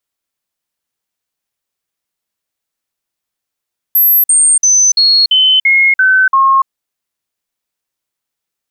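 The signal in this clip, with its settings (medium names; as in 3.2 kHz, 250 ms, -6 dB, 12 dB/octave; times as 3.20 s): stepped sine 12.2 kHz down, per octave 2, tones 8, 0.29 s, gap 0.05 s -5.5 dBFS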